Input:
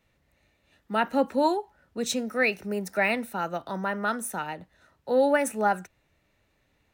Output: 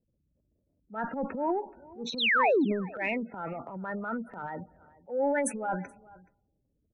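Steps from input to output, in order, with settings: single-diode clipper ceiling -13.5 dBFS; 2.18–2.65 s: painted sound fall 240–4400 Hz -19 dBFS; 4.46–5.19 s: peaking EQ 1.6 kHz +5 dB 2.5 oct; on a send at -19.5 dB: reverberation, pre-delay 3 ms; on the sum: level-controlled noise filter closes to 440 Hz, open at -21.5 dBFS; spectral gate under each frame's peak -15 dB strong; transient shaper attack -9 dB, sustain +9 dB; echo from a far wall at 73 m, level -22 dB; trim -4.5 dB

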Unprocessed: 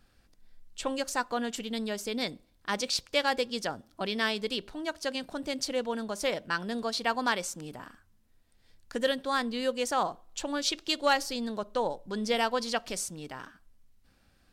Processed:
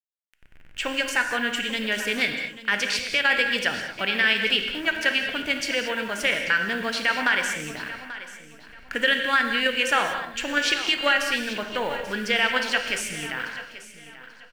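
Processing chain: send-on-delta sampling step -47.5 dBFS; high-order bell 2.1 kHz +15 dB 1.3 oct; in parallel at -0.5 dB: level held to a coarse grid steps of 23 dB; on the sum: peak limiter -11 dBFS, peak gain reduction 10 dB; on a send: feedback delay 837 ms, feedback 27%, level -15 dB; on the sum: gated-style reverb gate 250 ms flat, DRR 4.5 dB

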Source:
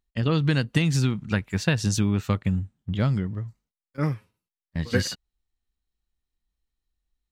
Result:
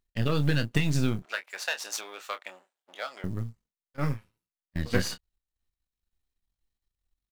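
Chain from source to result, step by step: partial rectifier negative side -12 dB; 1.22–3.24 s: high-pass 610 Hz 24 dB/octave; short-mantissa float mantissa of 4-bit; doubling 27 ms -10.5 dB

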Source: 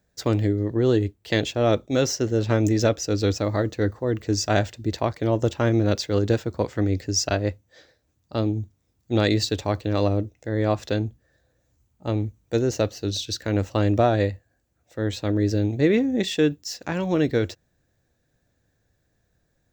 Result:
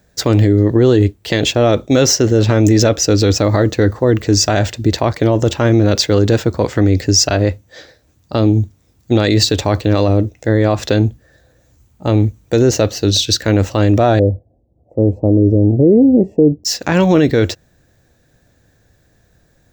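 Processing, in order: 14.19–16.65 s: inverse Chebyshev low-pass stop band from 1.4 kHz, stop band 40 dB; loudness maximiser +15.5 dB; trim -1 dB

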